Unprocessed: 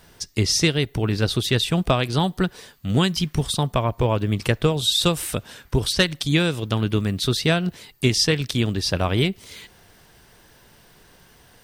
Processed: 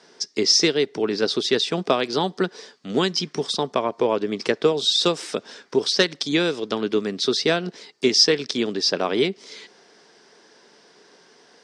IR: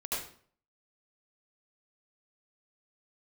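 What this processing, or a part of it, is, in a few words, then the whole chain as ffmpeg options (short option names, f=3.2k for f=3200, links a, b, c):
television speaker: -af "highpass=f=220:w=0.5412,highpass=f=220:w=1.3066,equalizer=f=420:t=q:w=4:g=7,equalizer=f=2.8k:t=q:w=4:g=-4,equalizer=f=5.2k:t=q:w=4:g=7,lowpass=f=6.8k:w=0.5412,lowpass=f=6.8k:w=1.3066"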